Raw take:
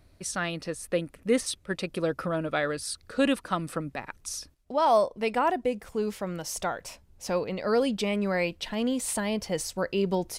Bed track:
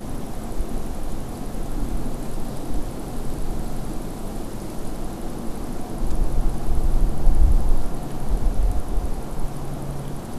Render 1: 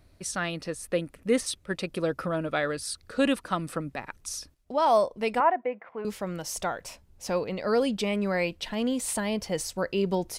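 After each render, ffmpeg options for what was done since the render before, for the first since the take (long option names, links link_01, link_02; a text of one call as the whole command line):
ffmpeg -i in.wav -filter_complex "[0:a]asettb=1/sr,asplit=3[link_01][link_02][link_03];[link_01]atrim=end=5.404[link_04];[link_02]atrim=start=5.4:end=6.05,asetpts=PTS-STARTPTS,afade=type=in:duration=0.004:curve=qsin,afade=type=out:start_time=0.646:duration=0.004:curve=qsin,highpass=380,equalizer=frequency=410:width_type=q:width=4:gain=-6,equalizer=frequency=670:width_type=q:width=4:gain=4,equalizer=frequency=1000:width_type=q:width=4:gain=4,equalizer=frequency=2100:width_type=q:width=4:gain=5,lowpass=frequency=2200:width=0.5412,lowpass=frequency=2200:width=1.3066[link_05];[link_03]atrim=start=6.046[link_06];[link_04][link_05]acrossfade=duration=0.004:curve1=hsin:curve2=qsin[link_07];[link_07][link_06]acrossfade=duration=0.004:curve1=qsin:curve2=hsin" out.wav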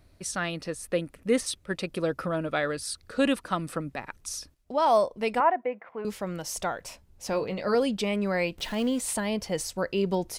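ffmpeg -i in.wav -filter_complex "[0:a]asettb=1/sr,asplit=3[link_01][link_02][link_03];[link_01]atrim=end=7.314[link_04];[link_02]atrim=start=7.31:end=7.75,asetpts=PTS-STARTPTS,afade=type=in:duration=0.004:curve=qsin,afade=type=out:start_time=0.436:duration=0.004:curve=qsin,asplit=2[link_05][link_06];[link_06]adelay=20,volume=-8dB[link_07];[link_05][link_07]amix=inputs=2:normalize=0,atrim=end_sample=19404[link_08];[link_03]atrim=start=7.746[link_09];[link_04][link_08]acrossfade=duration=0.004:curve1=hsin:curve2=qsin[link_10];[link_10][link_09]acrossfade=duration=0.004:curve1=qsin:curve2=hsin,asettb=1/sr,asplit=3[link_11][link_12][link_13];[link_11]atrim=end=8.584[link_14];[link_12]atrim=start=8.58:end=8.99,asetpts=PTS-STARTPTS,afade=type=in:duration=0.004:curve=qsin,afade=type=out:start_time=0.406:duration=0.004:curve=qsin,aeval=exprs='val(0)+0.5*0.0106*sgn(val(0))':channel_layout=same[link_15];[link_13]atrim=start=8.986[link_16];[link_14][link_15]acrossfade=duration=0.004:curve1=hsin:curve2=qsin[link_17];[link_17][link_16]acrossfade=duration=0.004:curve1=qsin:curve2=hsin" out.wav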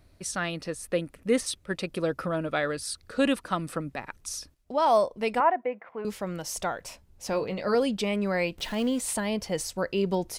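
ffmpeg -i in.wav -af anull out.wav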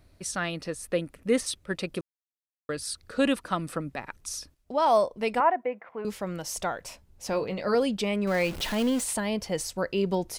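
ffmpeg -i in.wav -filter_complex "[0:a]asettb=1/sr,asplit=3[link_01][link_02][link_03];[link_01]atrim=end=8.274[link_04];[link_02]atrim=start=8.27:end=9.04,asetpts=PTS-STARTPTS,afade=type=in:duration=0.004:curve=qsin,afade=type=out:start_time=0.766:duration=0.004:curve=qsin,aeval=exprs='val(0)+0.5*0.0211*sgn(val(0))':channel_layout=same[link_05];[link_03]atrim=start=9.036[link_06];[link_04][link_05]acrossfade=duration=0.004:curve1=hsin:curve2=qsin[link_07];[link_07][link_06]acrossfade=duration=0.004:curve1=qsin:curve2=hsin,asplit=3[link_08][link_09][link_10];[link_08]atrim=end=2.01,asetpts=PTS-STARTPTS,afade=type=out:start_time=2.006:duration=0.004:curve=hsin[link_11];[link_09]atrim=start=2.01:end=2.69,asetpts=PTS-STARTPTS,volume=0[link_12];[link_10]atrim=start=2.69,asetpts=PTS-STARTPTS,afade=type=in:duration=0.004:curve=hsin[link_13];[link_11][link_12][link_13]concat=n=3:v=0:a=1" out.wav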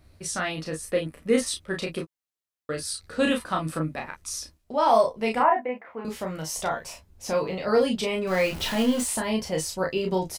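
ffmpeg -i in.wav -filter_complex "[0:a]asplit=2[link_01][link_02];[link_02]adelay=13,volume=-7dB[link_03];[link_01][link_03]amix=inputs=2:normalize=0,aecho=1:1:32|44:0.668|0.266" out.wav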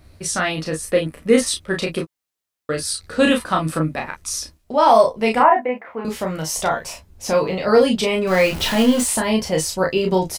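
ffmpeg -i in.wav -af "volume=7.5dB,alimiter=limit=-2dB:level=0:latency=1" out.wav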